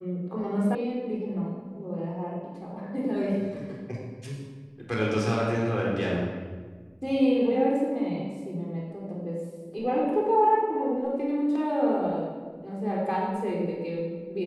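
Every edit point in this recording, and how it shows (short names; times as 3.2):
0.75 sound cut off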